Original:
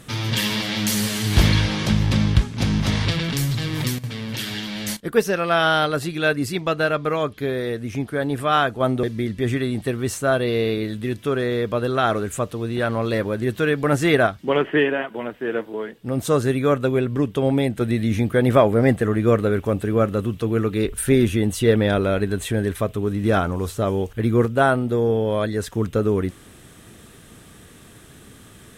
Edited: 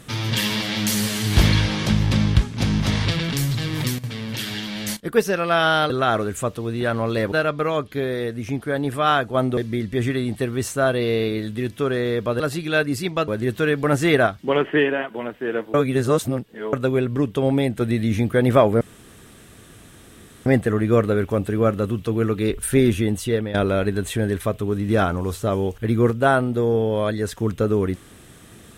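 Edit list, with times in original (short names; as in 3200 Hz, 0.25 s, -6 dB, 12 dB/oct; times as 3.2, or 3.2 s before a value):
5.9–6.78 swap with 11.86–13.28
15.74–16.73 reverse
18.81 insert room tone 1.65 s
21.18–21.89 fade out equal-power, to -12.5 dB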